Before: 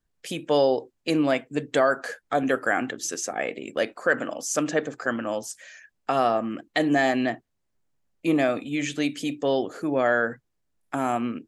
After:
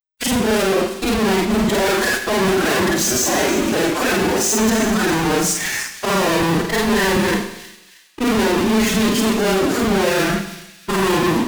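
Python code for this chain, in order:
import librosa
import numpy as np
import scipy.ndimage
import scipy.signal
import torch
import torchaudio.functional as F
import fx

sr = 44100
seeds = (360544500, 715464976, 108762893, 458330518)

p1 = fx.frame_reverse(x, sr, frame_ms=106.0)
p2 = fx.peak_eq(p1, sr, hz=150.0, db=14.5, octaves=1.3)
p3 = fx.rider(p2, sr, range_db=3, speed_s=0.5)
p4 = p2 + (p3 * 10.0 ** (-3.0 / 20.0))
p5 = fx.leveller(p4, sr, passes=2)
p6 = fx.fuzz(p5, sr, gain_db=40.0, gate_db=-49.0)
p7 = fx.pitch_keep_formants(p6, sr, semitones=6.5)
p8 = p7 + fx.echo_wet_highpass(p7, sr, ms=316, feedback_pct=40, hz=3000.0, wet_db=-11.5, dry=0)
p9 = fx.rev_schroeder(p8, sr, rt60_s=0.87, comb_ms=32, drr_db=7.0)
y = p9 * 10.0 ** (-3.5 / 20.0)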